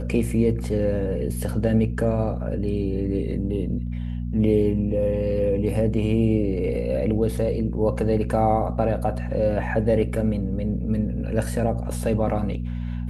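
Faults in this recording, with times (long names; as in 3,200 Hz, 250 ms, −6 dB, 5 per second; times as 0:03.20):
mains hum 60 Hz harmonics 4 −28 dBFS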